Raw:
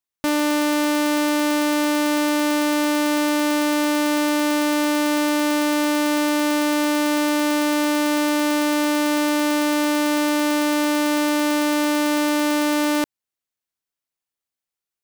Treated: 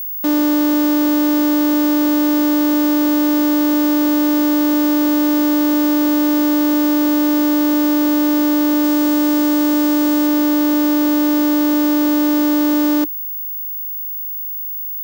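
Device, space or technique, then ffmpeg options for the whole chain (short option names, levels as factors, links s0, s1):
old television with a line whistle: -filter_complex "[0:a]asettb=1/sr,asplit=3[s0][s1][s2];[s0]atrim=end=8.844[s3];[s1]atrim=start=8.84:end=10.27,asetpts=PTS-STARTPTS,afade=t=in:d=0.004:c=qsin,afade=t=out:st=1.426:d=0.004:c=qsin,highshelf=f=12000:g=11[s4];[s2]atrim=start=10.266[s5];[s3][s4]acrossfade=d=0.004:c1=hsin:c2=qsin[s6];[s6][s5]acrossfade=d=0.004:c1=qsin:c2=hsin,highpass=210,equalizer=f=300:t=q:w=4:g=10,equalizer=f=510:t=q:w=4:g=3,equalizer=f=2300:t=q:w=4:g=-9,lowpass=f=8600:w=0.5412,lowpass=f=8600:w=1.3066,aeval=exprs='val(0)+0.1*sin(2*PI*15625*n/s)':c=same,volume=0.75"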